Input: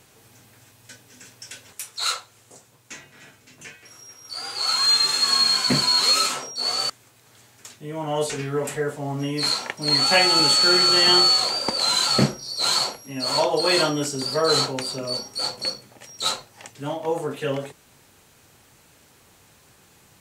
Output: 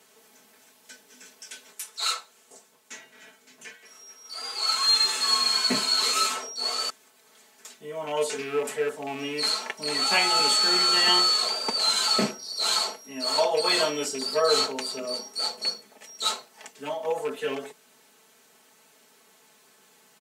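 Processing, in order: rattling part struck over -30 dBFS, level -25 dBFS; HPF 280 Hz 12 dB/oct; comb 4.6 ms, depth 84%; gain -5 dB

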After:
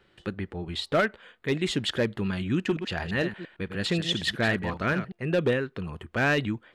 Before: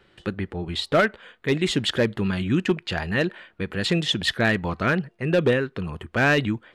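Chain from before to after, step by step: 2.54–5.12 reverse delay 0.114 s, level -9 dB; gain -4.5 dB

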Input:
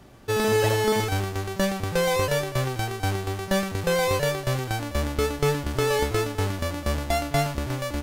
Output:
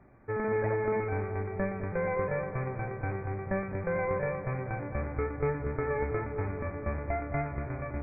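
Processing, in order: modulation noise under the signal 15 dB; brick-wall FIR low-pass 2500 Hz; on a send: darkening echo 0.217 s, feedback 77%, low-pass 1200 Hz, level -9 dB; on the sum: gain -8 dB

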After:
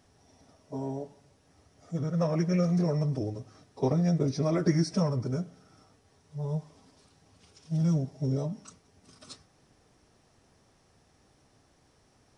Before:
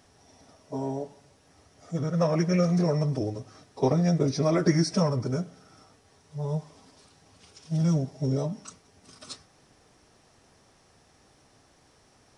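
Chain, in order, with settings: low shelf 360 Hz +5 dB; gain -6 dB

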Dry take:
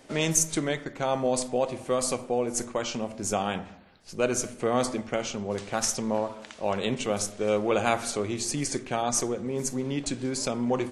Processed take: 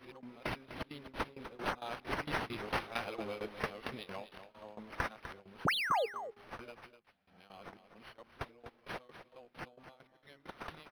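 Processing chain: whole clip reversed; Doppler pass-by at 2.74, 9 m/s, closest 6.7 m; pre-emphasis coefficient 0.9; painted sound fall, 5.65–6.06, 410–7800 Hz -17 dBFS; de-hum 408.6 Hz, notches 5; tremolo saw down 4.4 Hz, depth 90%; compressor 6:1, threshold -42 dBFS, peak gain reduction 22 dB; on a send: echo 0.25 s -11.5 dB; on the sum: decimation joined by straight lines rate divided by 6×; gain +10.5 dB

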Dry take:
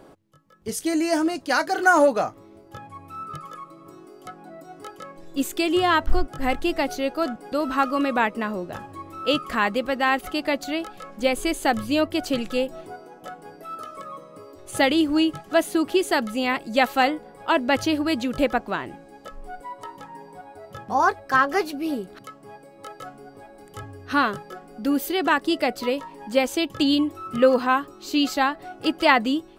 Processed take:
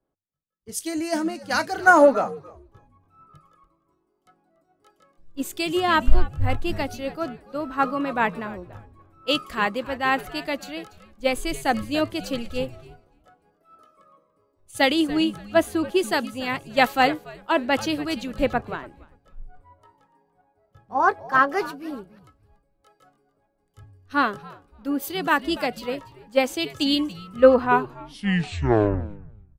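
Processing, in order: tape stop at the end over 1.95 s; frequency-shifting echo 0.288 s, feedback 37%, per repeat -110 Hz, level -13 dB; three-band expander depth 100%; gain -3 dB

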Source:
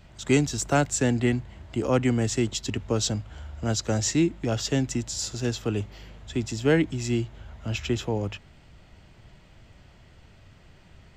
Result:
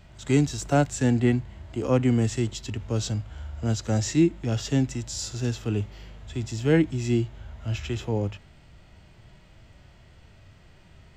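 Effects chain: harmonic-percussive split percussive -10 dB; gain +3 dB

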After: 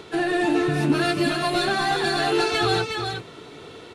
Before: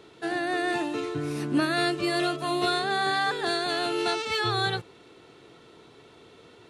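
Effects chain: rattling part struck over -42 dBFS, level -37 dBFS; dynamic EQ 180 Hz, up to +4 dB, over -45 dBFS, Q 0.87; in parallel at +1.5 dB: compressor 10:1, threshold -35 dBFS, peak gain reduction 17.5 dB; on the sum: soft clip -17.5 dBFS, distortion -16 dB; plain phase-vocoder stretch 0.59×; on a send: echo 0.364 s -5 dB; on the sum: gain +6 dB

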